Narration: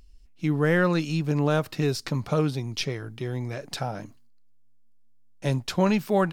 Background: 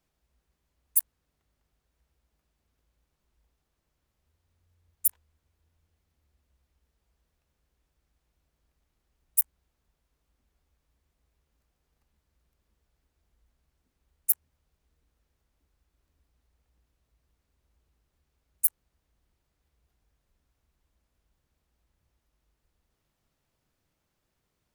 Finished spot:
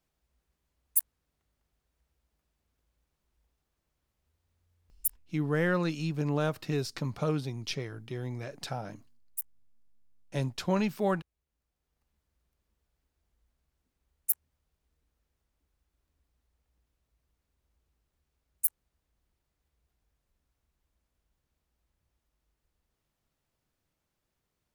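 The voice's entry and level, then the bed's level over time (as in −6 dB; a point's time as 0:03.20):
4.90 s, −6.0 dB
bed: 0:04.90 −2.5 dB
0:05.47 −12.5 dB
0:11.36 −12.5 dB
0:12.10 −4 dB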